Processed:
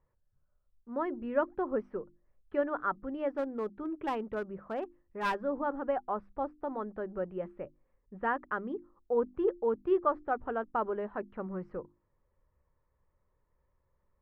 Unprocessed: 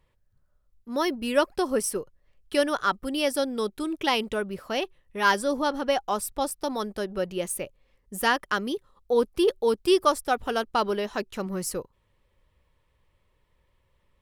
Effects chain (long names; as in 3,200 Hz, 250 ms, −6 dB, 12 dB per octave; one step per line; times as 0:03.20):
low-pass filter 1,600 Hz 24 dB per octave
mains-hum notches 50/100/150/200/250/300/350 Hz
0:03.32–0:05.35: asymmetric clip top −24 dBFS
level −6.5 dB